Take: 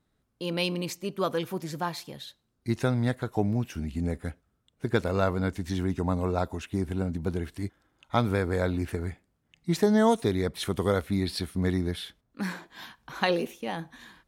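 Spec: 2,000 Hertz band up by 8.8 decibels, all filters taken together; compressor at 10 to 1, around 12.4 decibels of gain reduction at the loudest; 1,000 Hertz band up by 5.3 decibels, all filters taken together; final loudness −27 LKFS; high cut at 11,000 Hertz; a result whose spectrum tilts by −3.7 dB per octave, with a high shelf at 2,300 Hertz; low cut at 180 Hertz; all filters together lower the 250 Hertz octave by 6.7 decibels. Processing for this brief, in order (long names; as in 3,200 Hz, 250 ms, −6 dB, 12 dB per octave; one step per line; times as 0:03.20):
high-pass filter 180 Hz
low-pass filter 11,000 Hz
parametric band 250 Hz −7.5 dB
parametric band 1,000 Hz +4.5 dB
parametric band 2,000 Hz +8 dB
high-shelf EQ 2,300 Hz +4 dB
downward compressor 10 to 1, threshold −29 dBFS
level +9 dB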